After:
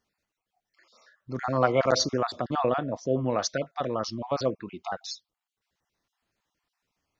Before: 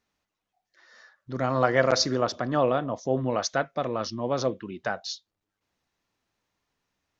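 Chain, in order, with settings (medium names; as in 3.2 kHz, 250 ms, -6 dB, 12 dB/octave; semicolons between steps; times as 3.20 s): random holes in the spectrogram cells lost 30%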